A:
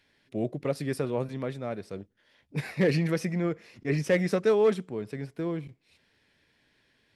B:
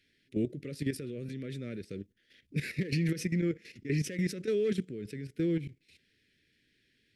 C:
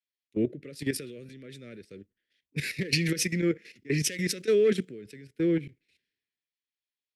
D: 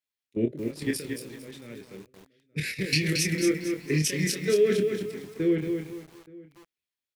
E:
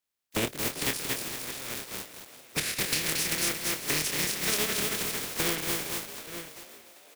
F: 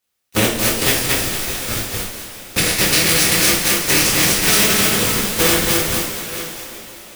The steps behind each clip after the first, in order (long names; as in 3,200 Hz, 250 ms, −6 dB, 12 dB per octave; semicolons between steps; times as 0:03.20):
brickwall limiter −24 dBFS, peak gain reduction 11 dB; Chebyshev band-stop filter 380–2,000 Hz, order 2; output level in coarse steps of 11 dB; level +5 dB
low-shelf EQ 270 Hz −10 dB; multiband upward and downward expander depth 100%; level +6.5 dB
double-tracking delay 26 ms −5 dB; slap from a distant wall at 150 metres, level −22 dB; feedback echo at a low word length 226 ms, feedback 35%, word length 8 bits, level −5.5 dB
compressing power law on the bin magnitudes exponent 0.29; downward compressor 5 to 1, threshold −32 dBFS, peak gain reduction 14.5 dB; echo with shifted repeats 391 ms, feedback 57%, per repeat +62 Hz, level −15 dB; level +5.5 dB
one scale factor per block 3 bits; in parallel at −7 dB: comparator with hysteresis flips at −24.5 dBFS; on the sum: coupled-rooms reverb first 0.5 s, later 4.2 s, from −18 dB, DRR −3.5 dB; level +7 dB